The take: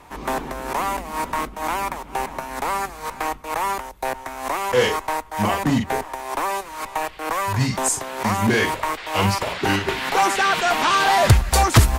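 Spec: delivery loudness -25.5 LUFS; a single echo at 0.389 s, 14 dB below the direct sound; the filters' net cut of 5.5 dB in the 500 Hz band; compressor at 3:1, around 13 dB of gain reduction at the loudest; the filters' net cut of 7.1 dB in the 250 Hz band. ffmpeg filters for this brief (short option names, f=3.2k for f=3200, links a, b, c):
-af "equalizer=f=250:t=o:g=-8,equalizer=f=500:t=o:g=-5,acompressor=threshold=-27dB:ratio=3,aecho=1:1:389:0.2,volume=4dB"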